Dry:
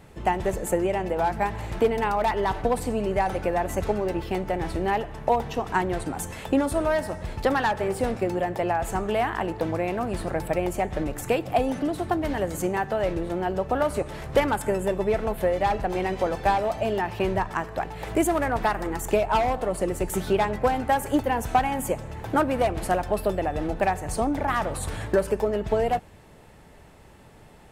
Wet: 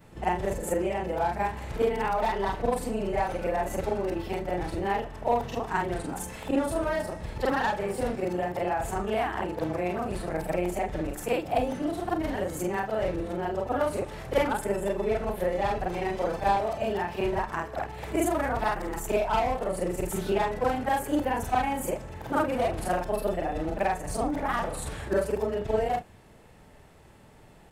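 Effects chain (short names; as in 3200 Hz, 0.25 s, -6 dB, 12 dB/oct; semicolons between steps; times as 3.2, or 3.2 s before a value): short-time reversal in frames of 0.101 s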